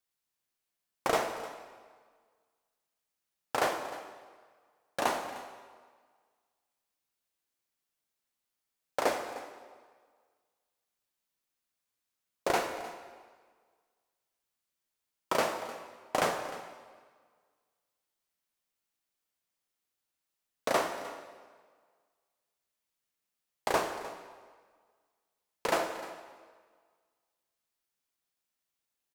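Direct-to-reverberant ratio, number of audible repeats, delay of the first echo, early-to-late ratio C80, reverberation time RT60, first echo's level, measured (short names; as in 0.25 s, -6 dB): 5.5 dB, 1, 0.305 s, 8.5 dB, 1.6 s, -17.0 dB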